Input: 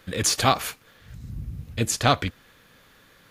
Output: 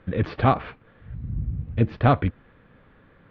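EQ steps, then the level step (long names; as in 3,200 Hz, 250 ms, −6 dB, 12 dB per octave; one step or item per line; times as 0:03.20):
Gaussian smoothing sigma 3.5 samples
high-frequency loss of the air 61 metres
low-shelf EQ 410 Hz +6.5 dB
0.0 dB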